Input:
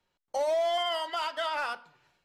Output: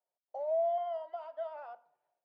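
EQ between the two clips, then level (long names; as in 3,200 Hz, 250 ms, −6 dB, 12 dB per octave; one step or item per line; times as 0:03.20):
resonant band-pass 670 Hz, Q 6
−2.5 dB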